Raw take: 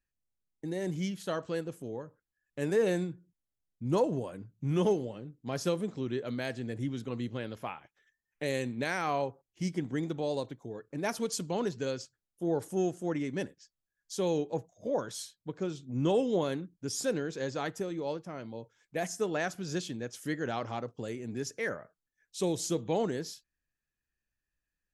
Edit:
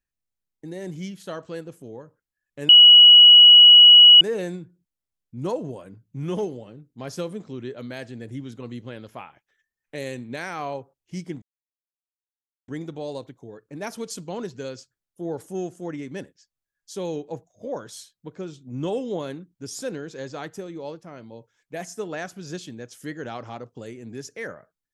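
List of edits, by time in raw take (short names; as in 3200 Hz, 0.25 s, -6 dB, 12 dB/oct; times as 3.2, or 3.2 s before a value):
2.69 add tone 2920 Hz -6 dBFS 1.52 s
9.9 insert silence 1.26 s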